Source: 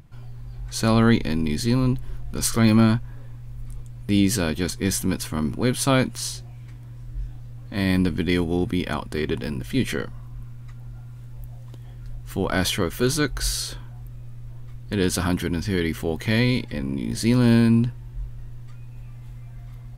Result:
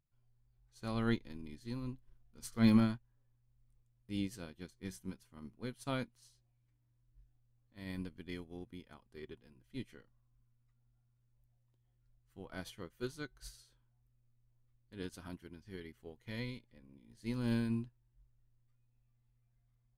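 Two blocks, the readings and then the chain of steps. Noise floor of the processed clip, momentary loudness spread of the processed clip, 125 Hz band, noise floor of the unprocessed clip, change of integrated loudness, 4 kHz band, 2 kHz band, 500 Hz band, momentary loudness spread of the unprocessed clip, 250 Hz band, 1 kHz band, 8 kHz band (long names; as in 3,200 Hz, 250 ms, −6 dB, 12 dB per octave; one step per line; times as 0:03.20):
−76 dBFS, 18 LU, −19.5 dB, −39 dBFS, −16.5 dB, −21.5 dB, −20.0 dB, −20.0 dB, 22 LU, −16.5 dB, −19.0 dB, −27.5 dB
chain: flanger 0.12 Hz, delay 1.6 ms, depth 4.6 ms, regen +83%
expander for the loud parts 2.5 to 1, over −34 dBFS
level −5.5 dB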